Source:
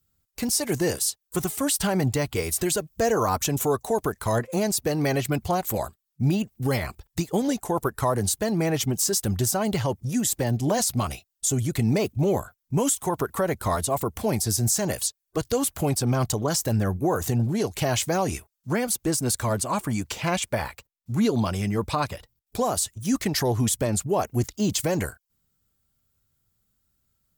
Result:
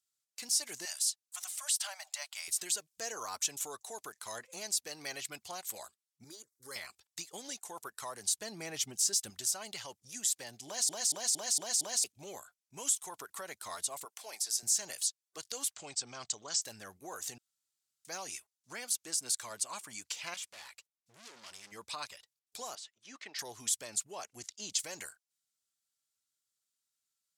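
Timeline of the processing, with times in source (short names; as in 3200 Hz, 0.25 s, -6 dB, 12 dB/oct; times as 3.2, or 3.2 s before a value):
0.85–2.48 brick-wall FIR high-pass 570 Hz
6.24–6.76 fixed phaser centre 730 Hz, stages 6
8.29–9.3 low shelf 400 Hz +8.5 dB
10.66 stutter in place 0.23 s, 6 plays
14.05–14.63 Chebyshev high-pass 590 Hz
15.73–16.62 elliptic low-pass 8100 Hz
17.38–18.05 room tone
20.34–21.72 overloaded stage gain 33.5 dB
22.75–23.39 BPF 310–2700 Hz
24.09–24.79 LPF 9500 Hz
whole clip: LPF 6500 Hz 12 dB/oct; differentiator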